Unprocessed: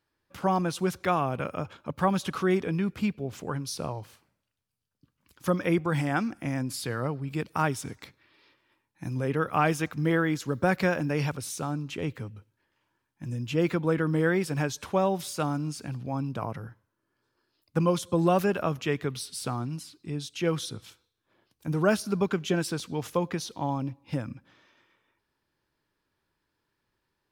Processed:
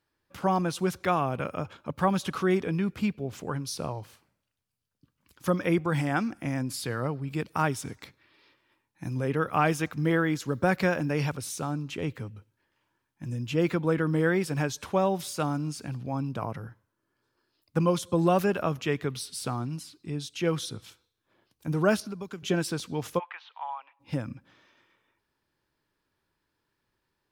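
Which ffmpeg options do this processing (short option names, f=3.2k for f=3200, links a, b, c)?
-filter_complex "[0:a]asettb=1/sr,asplit=3[a][b][c];[a]atrim=end=22.004[d];[b]atrim=start=22:end=22.43,asetpts=PTS-STARTPTS,afade=t=in:d=0.004:c=qsin,afade=t=out:st=0.426:d=0.004:c=qsin,acrossover=split=110|4700[e][f][g];[e]acompressor=threshold=-58dB:ratio=4[h];[f]acompressor=threshold=-37dB:ratio=4[i];[g]acompressor=threshold=-54dB:ratio=4[j];[h][i][j]amix=inputs=3:normalize=0[k];[c]atrim=start=22.426[l];[d][k]acrossfade=d=0.004:c1=hsin:c2=qsin[m];[m][l]acrossfade=d=0.004:c1=qsin:c2=hsin,asplit=3[n][o][p];[n]afade=t=out:st=23.18:d=0.02[q];[o]asuperpass=centerf=1600:order=8:qfactor=0.7,afade=t=in:st=23.18:d=0.02,afade=t=out:st=23.99:d=0.02[r];[p]afade=t=in:st=23.99:d=0.02[s];[q][r][s]amix=inputs=3:normalize=0"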